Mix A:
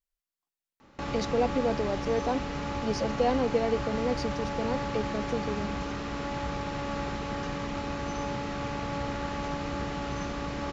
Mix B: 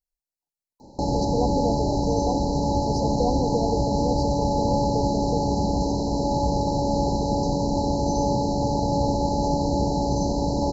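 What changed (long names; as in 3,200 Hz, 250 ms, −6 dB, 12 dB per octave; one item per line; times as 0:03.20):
background +11.0 dB
master: add linear-phase brick-wall band-stop 1,000–3,900 Hz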